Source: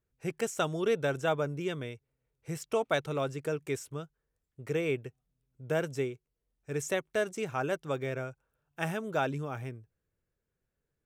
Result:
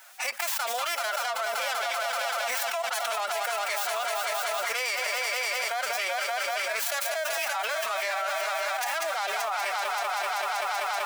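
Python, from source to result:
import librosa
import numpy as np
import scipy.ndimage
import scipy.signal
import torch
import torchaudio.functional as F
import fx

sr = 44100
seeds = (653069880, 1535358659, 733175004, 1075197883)

p1 = fx.tracing_dist(x, sr, depth_ms=0.43)
p2 = scipy.signal.sosfilt(scipy.signal.butter(4, 750.0, 'highpass', fs=sr, output='sos'), p1)
p3 = p2 + fx.echo_heads(p2, sr, ms=192, heads='all three', feedback_pct=63, wet_db=-15.5, dry=0)
p4 = fx.pitch_keep_formants(p3, sr, semitones=7.0)
y = fx.env_flatten(p4, sr, amount_pct=100)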